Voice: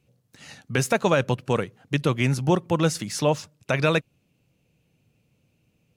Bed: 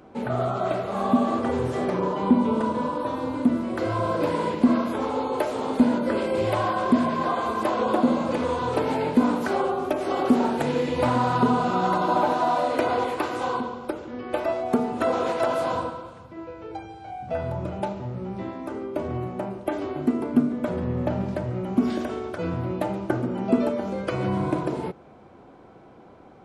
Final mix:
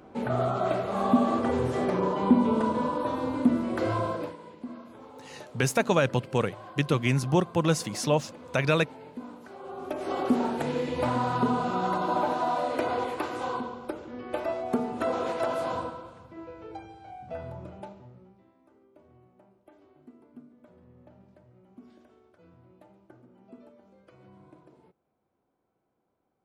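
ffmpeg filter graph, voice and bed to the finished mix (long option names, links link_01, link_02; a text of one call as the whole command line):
ffmpeg -i stem1.wav -i stem2.wav -filter_complex "[0:a]adelay=4850,volume=-2.5dB[link_01];[1:a]volume=14.5dB,afade=type=out:start_time=3.92:duration=0.44:silence=0.105925,afade=type=in:start_time=9.6:duration=0.51:silence=0.158489,afade=type=out:start_time=16.61:duration=1.8:silence=0.0630957[link_02];[link_01][link_02]amix=inputs=2:normalize=0" out.wav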